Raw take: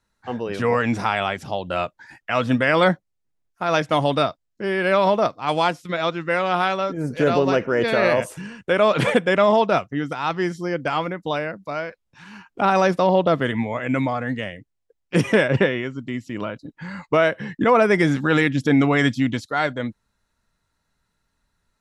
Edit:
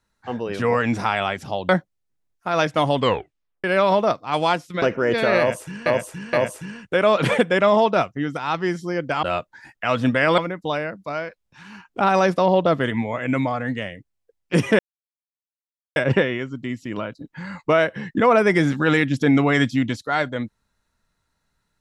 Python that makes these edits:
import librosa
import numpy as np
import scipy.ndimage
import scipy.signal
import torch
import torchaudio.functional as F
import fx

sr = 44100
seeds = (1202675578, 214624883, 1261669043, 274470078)

y = fx.edit(x, sr, fx.move(start_s=1.69, length_s=1.15, to_s=10.99),
    fx.tape_stop(start_s=4.1, length_s=0.69),
    fx.cut(start_s=5.97, length_s=1.55),
    fx.repeat(start_s=8.09, length_s=0.47, count=3),
    fx.insert_silence(at_s=15.4, length_s=1.17), tone=tone)